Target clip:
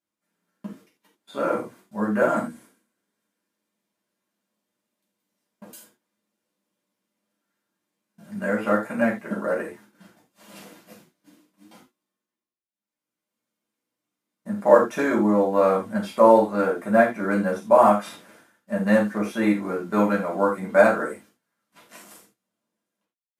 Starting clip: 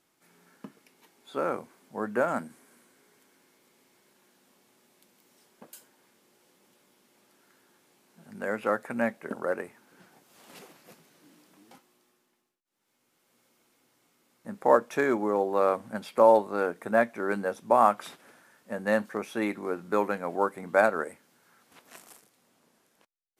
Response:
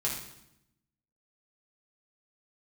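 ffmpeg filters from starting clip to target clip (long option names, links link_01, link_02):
-filter_complex "[0:a]agate=range=-21dB:threshold=-57dB:ratio=16:detection=peak[link_01];[1:a]atrim=start_sample=2205,atrim=end_sample=6615,asetrate=66150,aresample=44100[link_02];[link_01][link_02]afir=irnorm=-1:irlink=0,volume=3dB"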